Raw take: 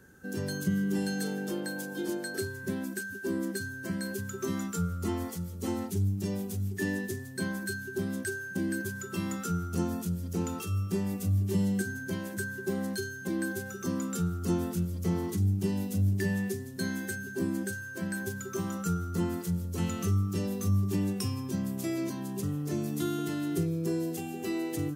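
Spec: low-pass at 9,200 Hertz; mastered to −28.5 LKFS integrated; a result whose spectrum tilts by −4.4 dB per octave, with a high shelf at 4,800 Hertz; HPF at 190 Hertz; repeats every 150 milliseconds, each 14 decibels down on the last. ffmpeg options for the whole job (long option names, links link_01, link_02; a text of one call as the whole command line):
ffmpeg -i in.wav -af "highpass=190,lowpass=9200,highshelf=frequency=4800:gain=6.5,aecho=1:1:150|300:0.2|0.0399,volume=6dB" out.wav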